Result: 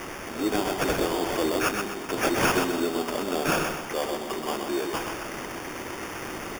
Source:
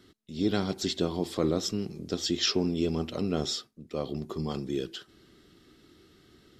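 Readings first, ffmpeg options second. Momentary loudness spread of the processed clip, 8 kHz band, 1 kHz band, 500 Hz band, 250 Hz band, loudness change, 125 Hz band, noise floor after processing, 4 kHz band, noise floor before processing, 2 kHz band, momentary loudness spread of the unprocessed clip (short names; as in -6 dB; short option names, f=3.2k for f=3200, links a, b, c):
11 LU, +5.5 dB, +13.5 dB, +5.0 dB, +1.5 dB, +3.0 dB, -3.0 dB, -37 dBFS, -0.5 dB, -61 dBFS, +15.0 dB, 9 LU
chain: -filter_complex "[0:a]aeval=exprs='val(0)+0.5*0.02*sgn(val(0))':c=same,highpass=f=330:w=0.5412,highpass=f=330:w=1.3066,aecho=1:1:1.1:0.39,acrusher=samples=11:mix=1:aa=0.000001,asoftclip=type=hard:threshold=-23.5dB,asplit=2[a][b];[b]aecho=0:1:127|254|381|508|635:0.562|0.225|0.09|0.036|0.0144[c];[a][c]amix=inputs=2:normalize=0,volume=5dB"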